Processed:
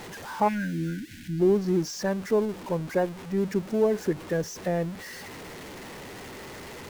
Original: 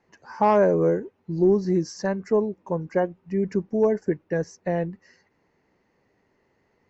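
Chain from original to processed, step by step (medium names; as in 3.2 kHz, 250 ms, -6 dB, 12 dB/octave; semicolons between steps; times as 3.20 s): jump at every zero crossing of -32.5 dBFS; tempo 1×; time-frequency box 0.48–1.40 s, 340–1400 Hz -30 dB; trim -3 dB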